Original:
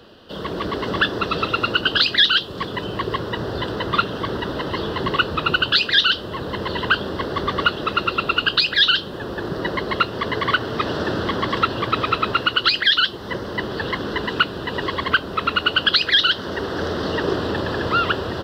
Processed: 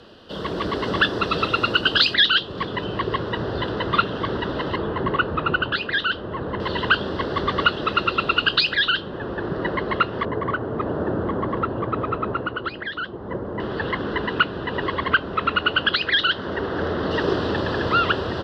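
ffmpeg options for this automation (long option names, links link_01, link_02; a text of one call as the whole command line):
ffmpeg -i in.wav -af "asetnsamples=nb_out_samples=441:pad=0,asendcmd='2.14 lowpass f 3900;4.76 lowpass f 1800;6.6 lowpass f 4800;8.75 lowpass f 2400;10.25 lowpass f 1000;13.6 lowpass f 2700;17.11 lowpass f 5200',lowpass=9600" out.wav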